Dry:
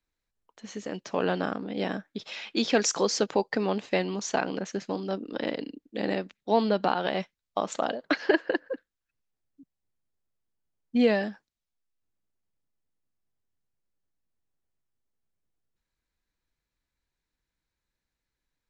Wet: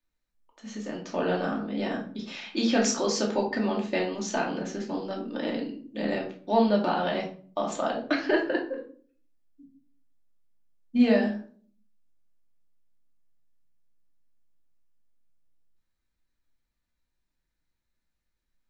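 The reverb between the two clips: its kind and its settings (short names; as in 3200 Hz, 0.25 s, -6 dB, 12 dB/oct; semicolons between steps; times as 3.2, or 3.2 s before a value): shoebox room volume 390 m³, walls furnished, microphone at 2.6 m; gain -4.5 dB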